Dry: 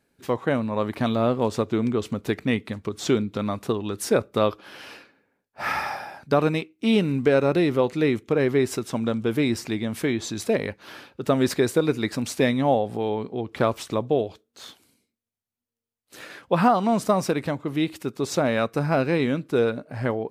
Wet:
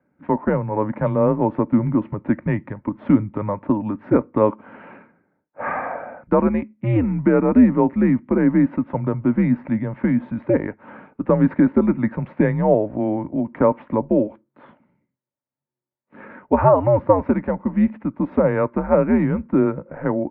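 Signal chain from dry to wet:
hollow resonant body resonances 350/660/1,000 Hz, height 12 dB, ringing for 35 ms
single-sideband voice off tune −100 Hz 190–2,200 Hz
level −1 dB

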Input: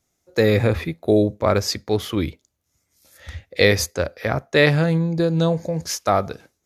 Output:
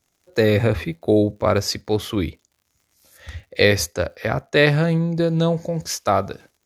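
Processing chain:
surface crackle 82 per second −48 dBFS

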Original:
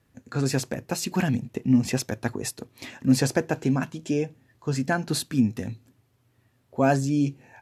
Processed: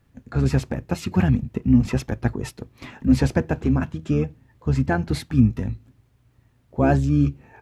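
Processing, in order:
bit-depth reduction 12 bits, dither triangular
bass and treble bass +6 dB, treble −10 dB
pitch-shifted copies added −12 semitones −5 dB

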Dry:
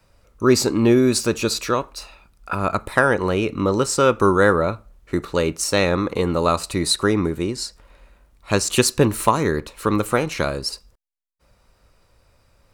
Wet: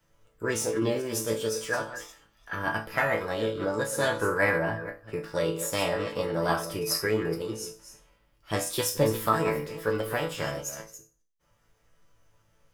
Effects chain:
delay that plays each chunk backwards 204 ms, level −11 dB
resonators tuned to a chord A2 sus4, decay 0.34 s
formants moved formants +4 semitones
level +5.5 dB

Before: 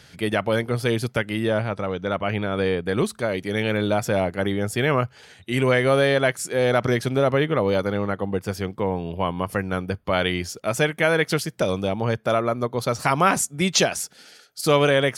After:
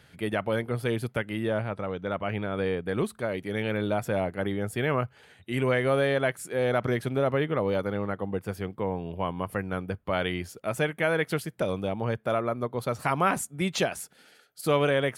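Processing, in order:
parametric band 5,600 Hz −10.5 dB 1 octave
level −5.5 dB

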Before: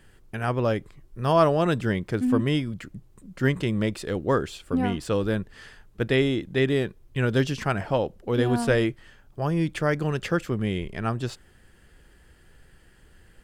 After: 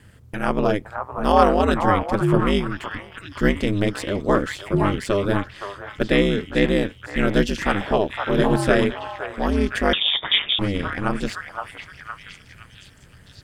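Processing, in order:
echo through a band-pass that steps 515 ms, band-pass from 980 Hz, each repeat 0.7 octaves, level −2 dB
ring modulation 100 Hz
0:09.93–0:10.59: voice inversion scrambler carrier 3,600 Hz
level +7 dB

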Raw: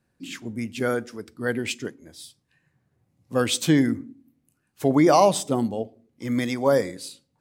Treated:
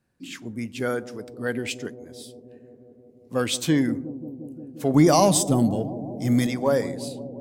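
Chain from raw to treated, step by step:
0:04.94–0:06.47: bass and treble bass +11 dB, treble +10 dB
in parallel at −11 dB: soft clipping −17.5 dBFS, distortion −8 dB
on the sum: bucket-brigade delay 176 ms, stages 1,024, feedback 83%, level −15 dB
level −3.5 dB

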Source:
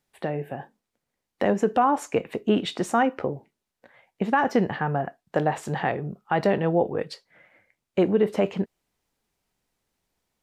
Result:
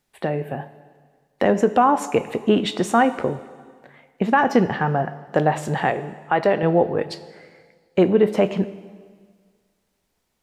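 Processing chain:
0:05.90–0:06.63: bass and treble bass −9 dB, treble −7 dB
dense smooth reverb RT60 1.7 s, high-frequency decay 0.95×, DRR 13 dB
level +4.5 dB

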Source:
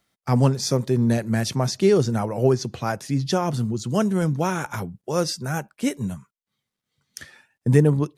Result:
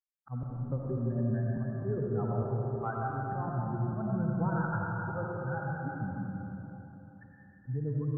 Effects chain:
spectral dynamics exaggerated over time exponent 2
Butterworth low-pass 1,600 Hz 72 dB per octave
parametric band 130 Hz +7.5 dB 0.52 octaves
speech leveller within 3 dB 2 s
volume swells 457 ms
downward compressor, threshold −33 dBFS, peak gain reduction 15 dB
comb and all-pass reverb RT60 3.6 s, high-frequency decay 0.6×, pre-delay 40 ms, DRR −3.5 dB

